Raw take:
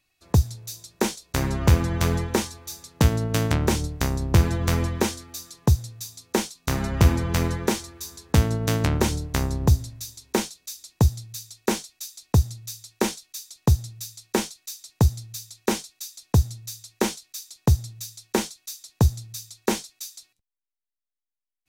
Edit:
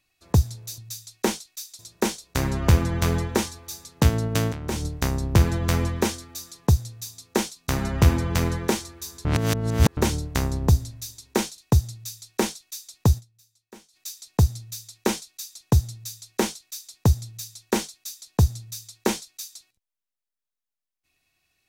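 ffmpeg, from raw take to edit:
-filter_complex "[0:a]asplit=9[a][b][c][d][e][f][g][h][i];[a]atrim=end=0.782[j];[b]atrim=start=16.548:end=17.562[k];[c]atrim=start=0.778:end=3.51,asetpts=PTS-STARTPTS,afade=t=out:st=2.728:d=0.004:c=hsin:silence=0.223872[l];[d]atrim=start=3.51:end=8.242,asetpts=PTS-STARTPTS,afade=t=in:d=0.34:c=qua:silence=0.223872[m];[e]atrim=start=8.238:end=8.962,asetpts=PTS-STARTPTS,areverse[n];[f]atrim=start=8.958:end=10.572[o];[g]atrim=start=12.198:end=14.04,asetpts=PTS-STARTPTS,afade=t=out:st=1.602:d=0.24:c=exp:silence=0.0707946[p];[h]atrim=start=14.04:end=14.35,asetpts=PTS-STARTPTS,volume=-23dB[q];[i]atrim=start=14.35,asetpts=PTS-STARTPTS,afade=t=in:d=0.24:c=exp:silence=0.0707946[r];[j][k]acrossfade=d=0.004:c1=hsin:c2=hsin[s];[l][m]concat=n=2:v=0:a=1[t];[s][t]acrossfade=d=0.004:c1=hsin:c2=hsin[u];[u][n]acrossfade=d=0.004:c1=hsin:c2=hsin[v];[v][o]acrossfade=d=0.004:c1=hsin:c2=hsin[w];[p][q][r]concat=n=3:v=0:a=1[x];[w][x]acrossfade=d=0.004:c1=hsin:c2=hsin"

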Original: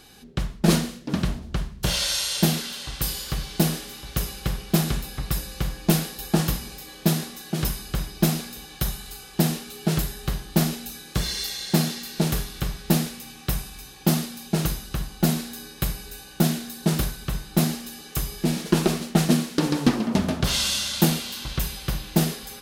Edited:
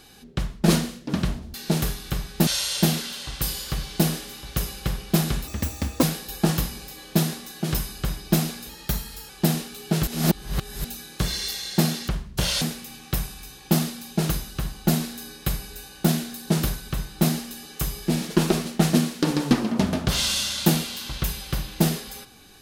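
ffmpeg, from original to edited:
-filter_complex "[0:a]asplit=11[a][b][c][d][e][f][g][h][i][j][k];[a]atrim=end=1.542[l];[b]atrim=start=12.038:end=12.972[m];[c]atrim=start=2.068:end=5.074[n];[d]atrim=start=5.07:end=5.93,asetpts=PTS-STARTPTS,asetrate=67914,aresample=44100,atrim=end_sample=24627,asetpts=PTS-STARTPTS[o];[e]atrim=start=5.926:end=8.594[p];[f]atrim=start=8.59:end=9.25,asetpts=PTS-STARTPTS,asetrate=48069,aresample=44100[q];[g]atrim=start=9.246:end=10.032[r];[h]atrim=start=10.028:end=10.802,asetpts=PTS-STARTPTS,areverse[s];[i]atrim=start=10.798:end=12.042[t];[j]atrim=start=1.538:end=2.072[u];[k]atrim=start=12.968[v];[l][m]acrossfade=d=0.004:c1=hsin:c2=hsin[w];[w][n]acrossfade=d=0.004:c1=hsin:c2=hsin[x];[x][o]acrossfade=d=0.004:c1=hsin:c2=hsin[y];[y][p]acrossfade=d=0.004:c1=hsin:c2=hsin[z];[z][q]acrossfade=d=0.004:c1=hsin:c2=hsin[aa];[aa][r]acrossfade=d=0.004:c1=hsin:c2=hsin[ab];[ab][s]acrossfade=d=0.004:c1=hsin:c2=hsin[ac];[ac][t]acrossfade=d=0.004:c1=hsin:c2=hsin[ad];[ad][u]acrossfade=d=0.004:c1=hsin:c2=hsin[ae];[ae][v]acrossfade=d=0.004:c1=hsin:c2=hsin"

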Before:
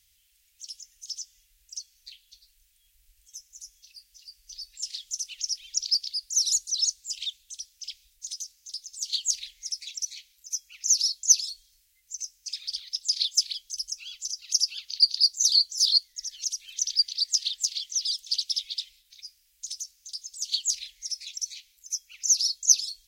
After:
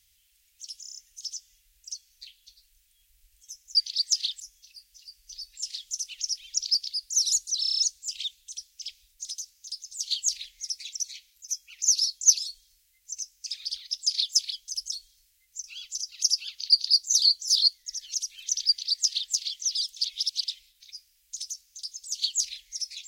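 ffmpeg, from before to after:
-filter_complex "[0:a]asplit=18[a][b][c][d][e][f][g][h][i][j][k][l][m][n][o][p][q][r];[a]atrim=end=0.842[s];[b]atrim=start=0.808:end=0.842[t];[c]atrim=start=0.808:end=0.842[u];[d]atrim=start=0.808:end=0.842[v];[e]atrim=start=0.808:end=0.842[w];[f]atrim=start=0.808:end=3.602[x];[g]atrim=start=16.968:end=17.622[y];[h]atrim=start=3.598:end=6.832[z];[i]atrim=start=6.798:end=6.832[aa];[j]atrim=start=6.798:end=6.832[ab];[k]atrim=start=6.798:end=6.832[ac];[l]atrim=start=6.798:end=6.832[ad];[m]atrim=start=6.798:end=6.832[ae];[n]atrim=start=6.798:end=13.942[af];[o]atrim=start=11.468:end=12.192[ag];[p]atrim=start=13.938:end=18.352[ah];[q]atrim=start=18.348:end=18.742,asetpts=PTS-STARTPTS,areverse[ai];[r]atrim=start=18.738[aj];[s][t]acrossfade=d=0.004:c1=hsin:c2=hsin[ak];[ak][u]acrossfade=d=0.004:c1=hsin:c2=hsin[al];[al][v]acrossfade=d=0.004:c1=hsin:c2=hsin[am];[am][w]acrossfade=d=0.004:c1=hsin:c2=hsin[an];[an][x]acrossfade=d=0.004:c1=hsin:c2=hsin[ao];[ao][y]acrossfade=d=0.004:c1=hsin:c2=hsin[ap];[ap][z]acrossfade=d=0.004:c1=hsin:c2=hsin[aq];[aq][aa]acrossfade=d=0.004:c1=hsin:c2=hsin[ar];[ar][ab]acrossfade=d=0.004:c1=hsin:c2=hsin[as];[as][ac]acrossfade=d=0.004:c1=hsin:c2=hsin[at];[at][ad]acrossfade=d=0.004:c1=hsin:c2=hsin[au];[au][ae]acrossfade=d=0.004:c1=hsin:c2=hsin[av];[av][af]acrossfade=d=0.004:c1=hsin:c2=hsin[aw];[aw][ag]acrossfade=d=0.004:c1=hsin:c2=hsin[ax];[ax][ah]acrossfade=d=0.004:c1=hsin:c2=hsin[ay];[ay][ai]acrossfade=d=0.004:c1=hsin:c2=hsin[az];[az][aj]acrossfade=d=0.004:c1=hsin:c2=hsin"

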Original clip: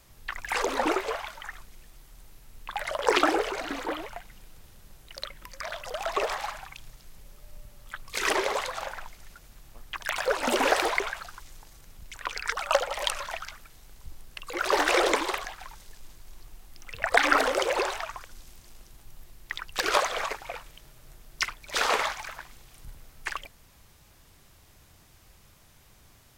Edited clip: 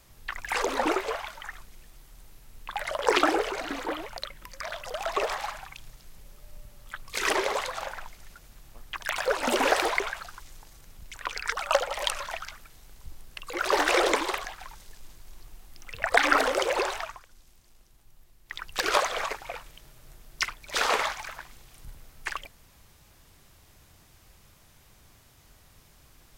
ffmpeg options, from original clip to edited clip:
-filter_complex "[0:a]asplit=4[a][b][c][d];[a]atrim=end=4.172[e];[b]atrim=start=5.168:end=18.21,asetpts=PTS-STARTPTS,afade=t=out:st=12.862:d=0.18:silence=0.354813[f];[c]atrim=start=18.21:end=19.45,asetpts=PTS-STARTPTS,volume=-9dB[g];[d]atrim=start=19.45,asetpts=PTS-STARTPTS,afade=t=in:d=0.18:silence=0.354813[h];[f][g][h]concat=n=3:v=0:a=1[i];[e][i]acrossfade=d=0.004:c1=hsin:c2=hsin"

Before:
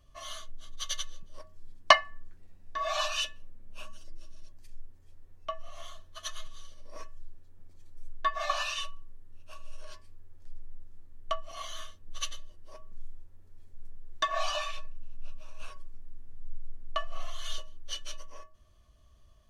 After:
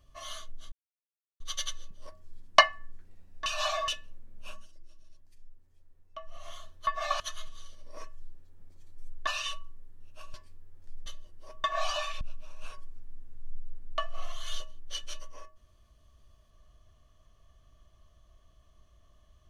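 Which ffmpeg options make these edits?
-filter_complex "[0:a]asplit=13[a][b][c][d][e][f][g][h][i][j][k][l][m];[a]atrim=end=0.72,asetpts=PTS-STARTPTS,afade=t=out:st=0.716:d=0.004:c=hsin,apad=pad_dur=0.68[n];[b]atrim=start=0.72:end=2.782,asetpts=PTS-STARTPTS,afade=t=in:d=0.004:c=hsin[o];[c]atrim=start=2.778:end=3.202,asetpts=PTS-STARTPTS,areverse[p];[d]atrim=start=3.198:end=4.02,asetpts=PTS-STARTPTS,afade=t=out:st=0.642:d=0.18:silence=0.398107[q];[e]atrim=start=4.02:end=5.5,asetpts=PTS-STARTPTS,volume=-8dB[r];[f]atrim=start=5.5:end=6.192,asetpts=PTS-STARTPTS,afade=t=in:d=0.18:silence=0.398107[s];[g]atrim=start=8.258:end=8.592[t];[h]atrim=start=6.188:end=8.262[u];[i]atrim=start=8.588:end=9.662[v];[j]atrim=start=9.918:end=10.642[w];[k]atrim=start=12.308:end=12.892[x];[l]atrim=start=14.228:end=14.802[y];[m]atrim=start=15.188[z];[n][o]concat=n=2:v=0:a=1[aa];[aa][p]acrossfade=d=0.004:c1=hsin:c2=hsin[ab];[q][r][s]concat=n=3:v=0:a=1[ac];[ab][ac]acrossfade=d=0.004:c1=hsin:c2=hsin[ad];[ad][t]acrossfade=d=0.004:c1=hsin:c2=hsin[ae];[ae][u]acrossfade=d=0.004:c1=hsin:c2=hsin[af];[af][v]acrossfade=d=0.004:c1=hsin:c2=hsin[ag];[ag][w]acrossfade=d=0.004:c1=hsin:c2=hsin[ah];[ah][x]acrossfade=d=0.004:c1=hsin:c2=hsin[ai];[ai][y]acrossfade=d=0.004:c1=hsin:c2=hsin[aj];[aj][z]acrossfade=d=0.004:c1=hsin:c2=hsin"

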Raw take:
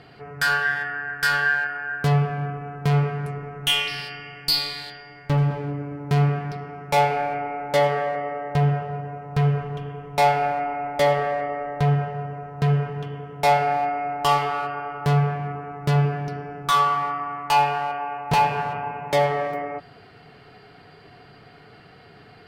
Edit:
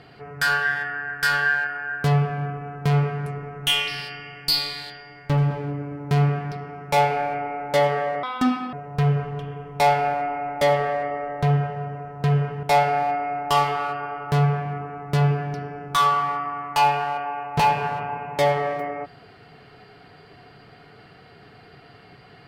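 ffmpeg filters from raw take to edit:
-filter_complex "[0:a]asplit=4[a][b][c][d];[a]atrim=end=8.234[e];[b]atrim=start=8.23:end=9.11,asetpts=PTS-STARTPTS,asetrate=77616,aresample=44100[f];[c]atrim=start=9.106:end=13.012[g];[d]atrim=start=13.368[h];[e][f]acrossfade=d=0.004:c1=hsin:c2=hsin[i];[i][g]acrossfade=d=0.004:c1=hsin:c2=hsin[j];[j][h]acrossfade=d=0.004:c1=hsin:c2=hsin"

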